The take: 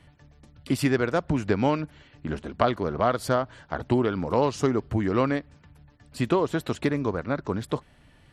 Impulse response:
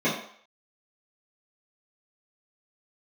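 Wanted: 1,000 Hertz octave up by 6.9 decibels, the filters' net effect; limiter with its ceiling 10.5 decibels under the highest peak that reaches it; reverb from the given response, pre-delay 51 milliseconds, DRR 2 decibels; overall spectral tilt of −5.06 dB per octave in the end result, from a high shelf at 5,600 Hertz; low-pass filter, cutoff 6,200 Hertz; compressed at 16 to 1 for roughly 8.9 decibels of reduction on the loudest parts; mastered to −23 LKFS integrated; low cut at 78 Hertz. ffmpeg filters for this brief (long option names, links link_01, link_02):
-filter_complex "[0:a]highpass=78,lowpass=6200,equalizer=frequency=1000:width_type=o:gain=9,highshelf=frequency=5600:gain=-8.5,acompressor=threshold=-20dB:ratio=16,alimiter=limit=-17dB:level=0:latency=1,asplit=2[link_01][link_02];[1:a]atrim=start_sample=2205,adelay=51[link_03];[link_02][link_03]afir=irnorm=-1:irlink=0,volume=-17dB[link_04];[link_01][link_04]amix=inputs=2:normalize=0,volume=4dB"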